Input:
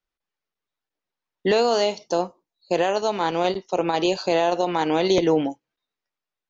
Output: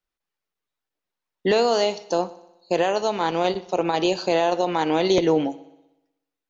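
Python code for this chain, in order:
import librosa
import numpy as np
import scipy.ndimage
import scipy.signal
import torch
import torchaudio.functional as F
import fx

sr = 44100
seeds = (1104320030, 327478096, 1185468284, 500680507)

y = fx.echo_heads(x, sr, ms=61, heads='first and second', feedback_pct=49, wet_db=-23.5)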